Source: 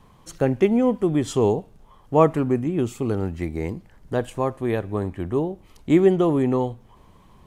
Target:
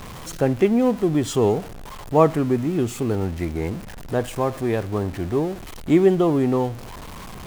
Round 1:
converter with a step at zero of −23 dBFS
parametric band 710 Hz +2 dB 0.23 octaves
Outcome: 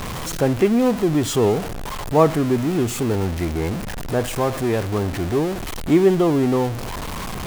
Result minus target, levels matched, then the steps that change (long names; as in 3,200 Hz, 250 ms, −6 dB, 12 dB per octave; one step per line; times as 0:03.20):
converter with a step at zero: distortion +8 dB
change: converter with a step at zero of −32 dBFS